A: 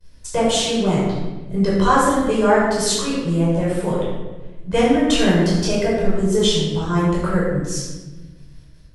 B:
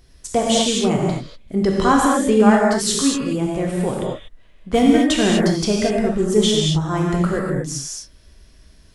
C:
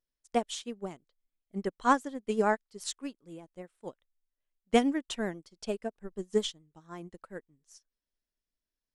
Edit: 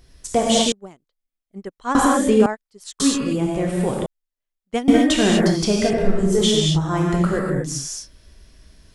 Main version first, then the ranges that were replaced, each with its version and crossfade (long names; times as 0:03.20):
B
0:00.72–0:01.95: punch in from C
0:02.46–0:03.00: punch in from C
0:04.06–0:04.88: punch in from C
0:05.93–0:06.41: punch in from A